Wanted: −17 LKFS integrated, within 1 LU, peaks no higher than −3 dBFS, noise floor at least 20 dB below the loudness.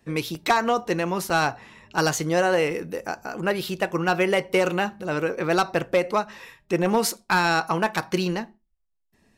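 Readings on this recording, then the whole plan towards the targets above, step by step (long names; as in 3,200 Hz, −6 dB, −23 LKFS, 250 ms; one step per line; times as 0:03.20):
number of dropouts 3; longest dropout 1.3 ms; integrated loudness −24.0 LKFS; sample peak −12.0 dBFS; target loudness −17.0 LKFS
→ repair the gap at 0:00.35/0:01.30/0:02.71, 1.3 ms
level +7 dB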